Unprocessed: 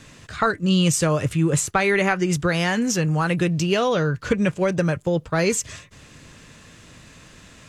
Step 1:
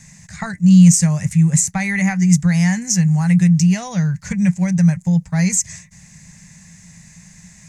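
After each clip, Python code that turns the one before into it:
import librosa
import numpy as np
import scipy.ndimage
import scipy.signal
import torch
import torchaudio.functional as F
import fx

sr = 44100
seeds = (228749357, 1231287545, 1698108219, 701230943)

y = fx.curve_eq(x, sr, hz=(130.0, 180.0, 270.0, 420.0, 820.0, 1300.0, 2000.0, 3100.0, 6500.0, 12000.0), db=(0, 13, -15, -21, -2, -14, 4, -13, 10, 1))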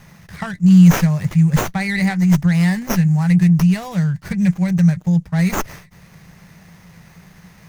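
y = fx.running_max(x, sr, window=5)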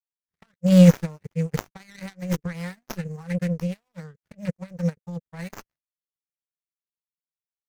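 y = fx.power_curve(x, sr, exponent=3.0)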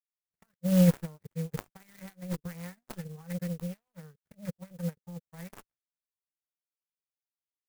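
y = fx.clock_jitter(x, sr, seeds[0], jitter_ms=0.066)
y = F.gain(torch.from_numpy(y), -9.0).numpy()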